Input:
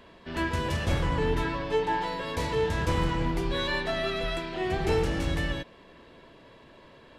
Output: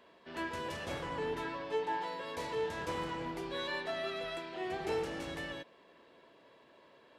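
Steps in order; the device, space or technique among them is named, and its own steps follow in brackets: filter by subtraction (in parallel: LPF 520 Hz 12 dB/oct + phase invert); on the sum: gain -9 dB

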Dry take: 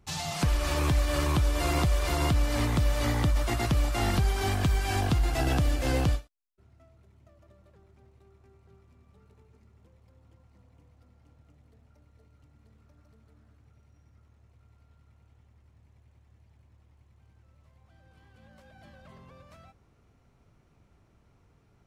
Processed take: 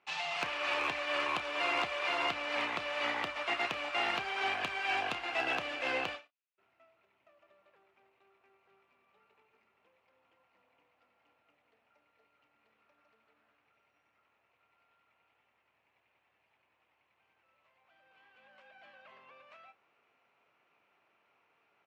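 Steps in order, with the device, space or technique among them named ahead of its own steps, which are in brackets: megaphone (BPF 690–2800 Hz; bell 2600 Hz +9 dB 0.49 oct; hard clip -23 dBFS, distortion -24 dB; doubler 31 ms -13.5 dB)

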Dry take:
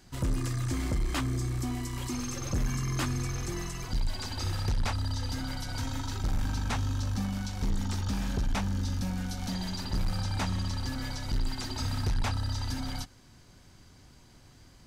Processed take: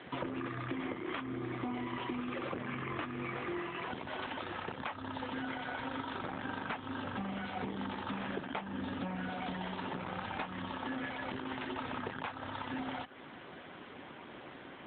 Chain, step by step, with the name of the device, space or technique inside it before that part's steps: voicemail (BPF 340–3200 Hz; compressor 10:1, threshold -50 dBFS, peak gain reduction 20 dB; gain +16 dB; AMR-NB 7.95 kbps 8000 Hz)

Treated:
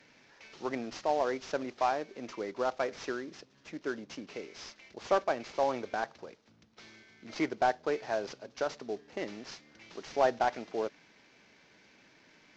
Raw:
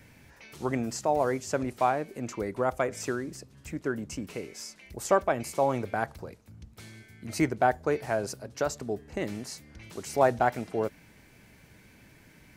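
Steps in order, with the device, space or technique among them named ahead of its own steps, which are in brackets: early wireless headset (HPF 280 Hz 12 dB/oct; CVSD 32 kbps); gain -3 dB

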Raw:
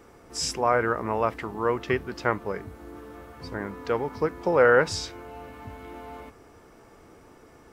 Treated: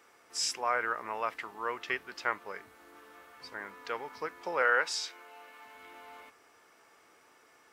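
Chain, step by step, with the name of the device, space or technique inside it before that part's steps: 4.62–5.75 Bessel high-pass 320 Hz, order 2; filter by subtraction (in parallel: LPF 2100 Hz 12 dB/oct + phase invert); on the sum: gain -3.5 dB

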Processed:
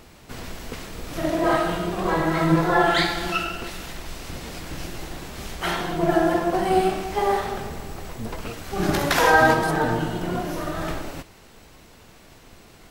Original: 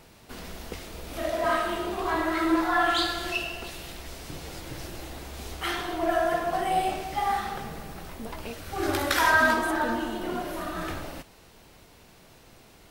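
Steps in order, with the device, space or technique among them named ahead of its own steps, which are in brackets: 4.16–5.95 doubler 22 ms -11 dB; octave pedal (harmoniser -12 st 0 dB); gain +2 dB

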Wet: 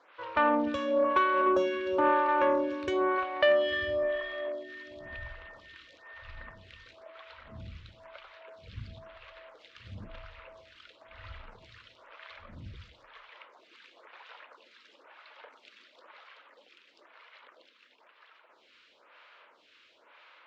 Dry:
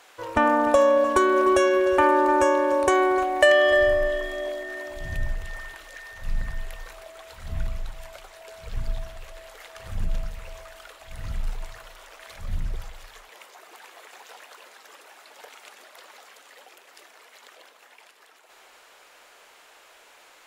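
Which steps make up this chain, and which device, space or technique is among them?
vibe pedal into a guitar amplifier (photocell phaser 1 Hz; tube stage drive 12 dB, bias 0.25; speaker cabinet 90–4000 Hz, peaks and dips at 160 Hz -10 dB, 410 Hz -7 dB, 750 Hz -10 dB, 1800 Hz -3 dB)

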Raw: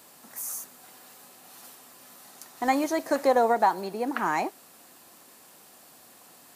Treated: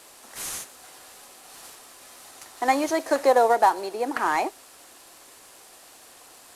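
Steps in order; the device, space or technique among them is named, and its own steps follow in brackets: early wireless headset (HPF 300 Hz 24 dB/oct; CVSD 64 kbps); gain +3.5 dB

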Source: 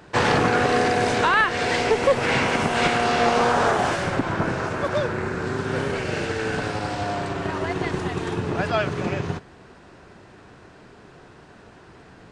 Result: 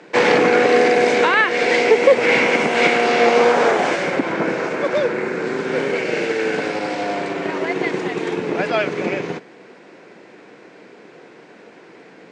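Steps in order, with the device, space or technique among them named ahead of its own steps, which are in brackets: television speaker (speaker cabinet 180–7900 Hz, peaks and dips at 320 Hz +4 dB, 490 Hz +8 dB, 1200 Hz -3 dB, 2200 Hz +9 dB); gain +2 dB

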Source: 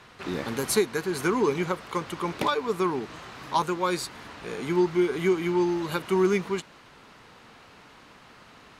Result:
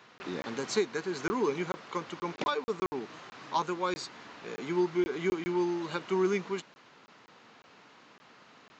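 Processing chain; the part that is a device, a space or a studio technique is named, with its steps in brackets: call with lost packets (HPF 170 Hz 12 dB/oct; downsampling 16000 Hz; packet loss packets of 20 ms random); gain -5 dB

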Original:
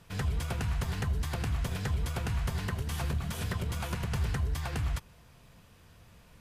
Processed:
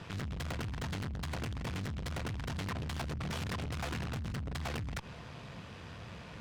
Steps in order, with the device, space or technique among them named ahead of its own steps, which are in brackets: valve radio (BPF 85–4500 Hz; tube stage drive 48 dB, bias 0.55; core saturation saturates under 140 Hz); gain +14.5 dB

